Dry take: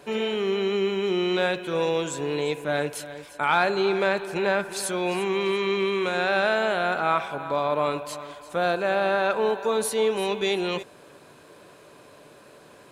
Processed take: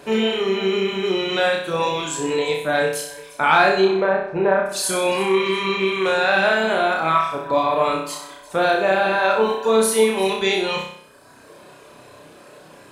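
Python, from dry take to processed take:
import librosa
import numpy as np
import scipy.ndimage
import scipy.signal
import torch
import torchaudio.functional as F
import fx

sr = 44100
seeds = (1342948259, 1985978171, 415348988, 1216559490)

y = fx.dereverb_blind(x, sr, rt60_s=1.3)
y = fx.lowpass(y, sr, hz=1300.0, slope=12, at=(3.85, 4.66))
y = fx.room_flutter(y, sr, wall_m=5.4, rt60_s=0.62)
y = y * librosa.db_to_amplitude(5.5)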